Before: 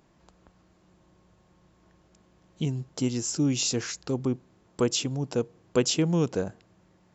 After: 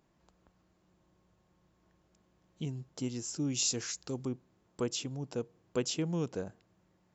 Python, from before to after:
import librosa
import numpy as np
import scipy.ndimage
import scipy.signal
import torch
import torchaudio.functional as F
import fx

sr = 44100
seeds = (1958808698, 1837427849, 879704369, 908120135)

y = fx.high_shelf(x, sr, hz=5200.0, db=11.0, at=(3.54, 4.29))
y = y * 10.0 ** (-9.0 / 20.0)